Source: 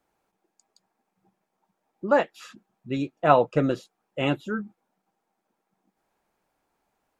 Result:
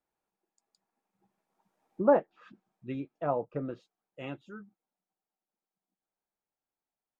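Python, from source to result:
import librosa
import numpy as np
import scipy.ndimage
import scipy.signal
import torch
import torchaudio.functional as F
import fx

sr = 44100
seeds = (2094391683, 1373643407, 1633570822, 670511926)

y = fx.doppler_pass(x, sr, speed_mps=8, closest_m=3.2, pass_at_s=1.94)
y = fx.env_lowpass_down(y, sr, base_hz=890.0, full_db=-29.0)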